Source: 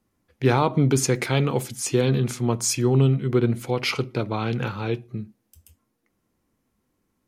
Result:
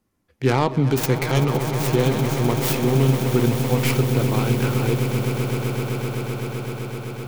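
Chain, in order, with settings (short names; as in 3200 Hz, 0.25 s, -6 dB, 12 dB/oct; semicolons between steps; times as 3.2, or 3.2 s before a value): tracing distortion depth 0.37 ms; swelling echo 0.128 s, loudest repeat 8, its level -12 dB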